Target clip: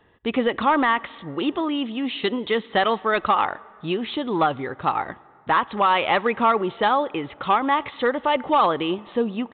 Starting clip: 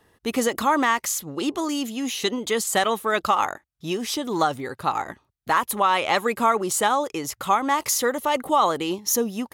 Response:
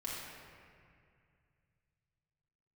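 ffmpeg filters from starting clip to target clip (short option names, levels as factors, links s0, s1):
-filter_complex "[0:a]volume=4.47,asoftclip=hard,volume=0.224,asplit=2[s0][s1];[1:a]atrim=start_sample=2205,asetrate=34839,aresample=44100[s2];[s1][s2]afir=irnorm=-1:irlink=0,volume=0.0631[s3];[s0][s3]amix=inputs=2:normalize=0,aresample=8000,aresample=44100,volume=1.19"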